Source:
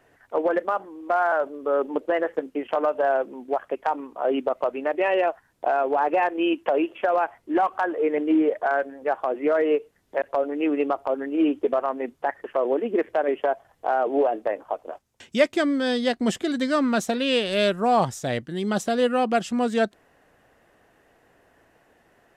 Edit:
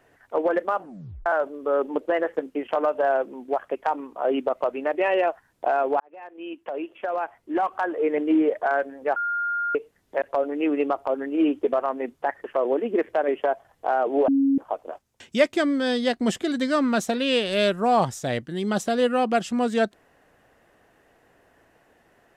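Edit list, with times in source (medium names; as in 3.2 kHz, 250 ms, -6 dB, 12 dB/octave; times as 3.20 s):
0.79 s: tape stop 0.47 s
6.00–8.13 s: fade in
9.16–9.75 s: bleep 1.41 kHz -23 dBFS
14.28–14.58 s: bleep 274 Hz -16.5 dBFS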